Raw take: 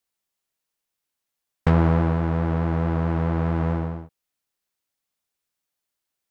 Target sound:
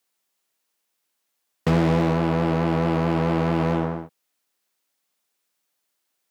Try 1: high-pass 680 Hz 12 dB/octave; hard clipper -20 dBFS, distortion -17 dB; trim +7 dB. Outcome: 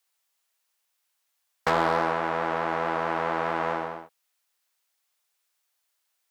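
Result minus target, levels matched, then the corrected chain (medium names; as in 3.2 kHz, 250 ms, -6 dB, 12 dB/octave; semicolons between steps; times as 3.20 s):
250 Hz band -9.0 dB
high-pass 200 Hz 12 dB/octave; hard clipper -20 dBFS, distortion -10 dB; trim +7 dB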